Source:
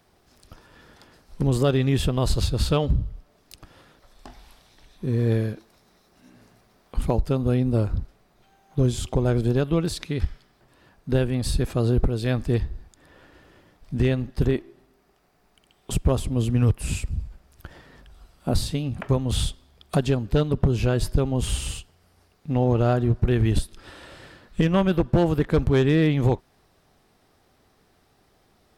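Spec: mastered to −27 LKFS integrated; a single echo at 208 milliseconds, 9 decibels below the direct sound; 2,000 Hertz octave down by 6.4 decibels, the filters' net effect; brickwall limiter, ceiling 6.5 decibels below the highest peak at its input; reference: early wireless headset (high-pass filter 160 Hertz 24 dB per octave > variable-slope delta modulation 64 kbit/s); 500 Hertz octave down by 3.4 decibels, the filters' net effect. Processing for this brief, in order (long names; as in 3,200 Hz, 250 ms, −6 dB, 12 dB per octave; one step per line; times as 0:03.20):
parametric band 500 Hz −4 dB
parametric band 2,000 Hz −8.5 dB
brickwall limiter −17.5 dBFS
high-pass filter 160 Hz 24 dB per octave
single-tap delay 208 ms −9 dB
variable-slope delta modulation 64 kbit/s
level +4.5 dB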